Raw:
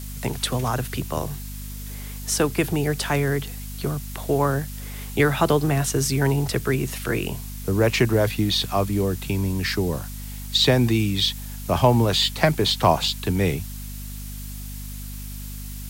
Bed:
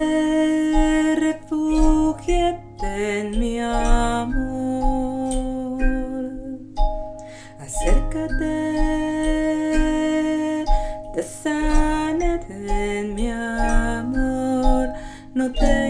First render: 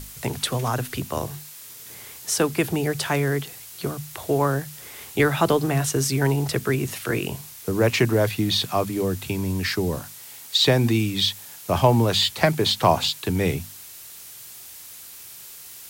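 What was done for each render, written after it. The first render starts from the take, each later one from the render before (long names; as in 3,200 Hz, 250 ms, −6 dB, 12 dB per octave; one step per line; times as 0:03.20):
mains-hum notches 50/100/150/200/250 Hz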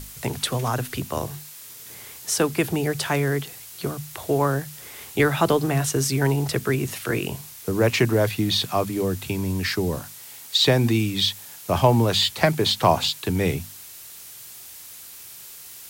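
no processing that can be heard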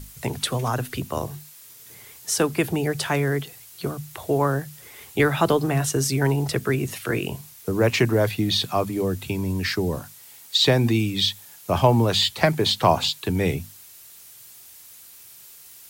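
broadband denoise 6 dB, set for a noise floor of −42 dBFS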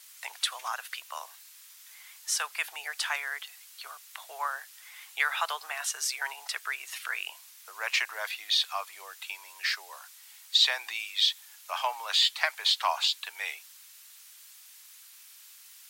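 Bessel high-pass filter 1,400 Hz, order 6
high-shelf EQ 7,400 Hz −9 dB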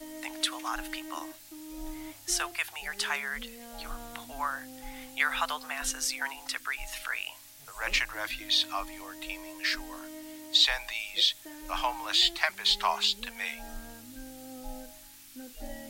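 mix in bed −24.5 dB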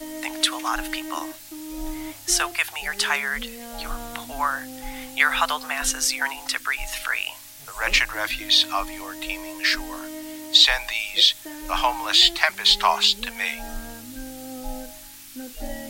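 level +8.5 dB
brickwall limiter −2 dBFS, peak gain reduction 1.5 dB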